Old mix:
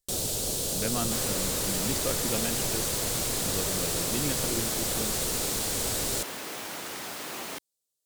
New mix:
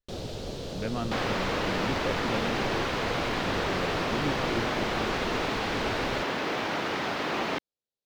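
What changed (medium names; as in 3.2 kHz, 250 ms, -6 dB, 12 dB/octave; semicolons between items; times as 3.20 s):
second sound +11.0 dB; master: add distance through air 250 m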